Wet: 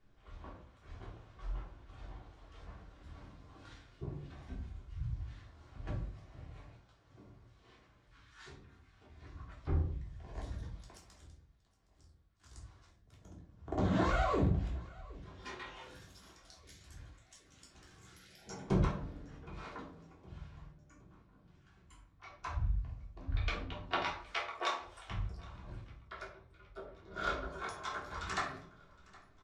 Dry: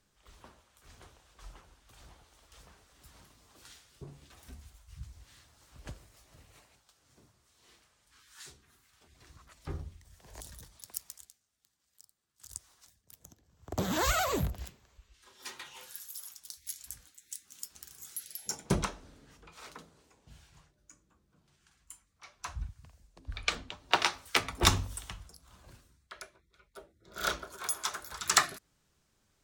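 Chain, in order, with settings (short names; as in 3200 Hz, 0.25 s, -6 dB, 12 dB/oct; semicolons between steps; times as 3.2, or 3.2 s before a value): 24.05–25.09 HPF 540 Hz 24 dB/oct; compressor 2:1, threshold -37 dBFS, peak gain reduction 11 dB; tape spacing loss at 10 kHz 28 dB; feedback echo 0.766 s, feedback 53%, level -23 dB; shoebox room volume 320 m³, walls furnished, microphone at 3.3 m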